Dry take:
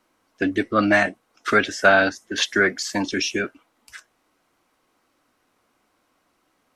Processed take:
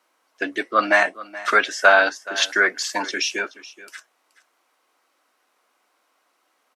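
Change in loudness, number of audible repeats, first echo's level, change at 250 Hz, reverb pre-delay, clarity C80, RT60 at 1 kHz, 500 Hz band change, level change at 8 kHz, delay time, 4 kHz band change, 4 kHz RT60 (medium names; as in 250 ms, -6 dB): +1.0 dB, 1, -18.0 dB, -9.0 dB, no reverb, no reverb, no reverb, -0.5 dB, +1.5 dB, 426 ms, +1.5 dB, no reverb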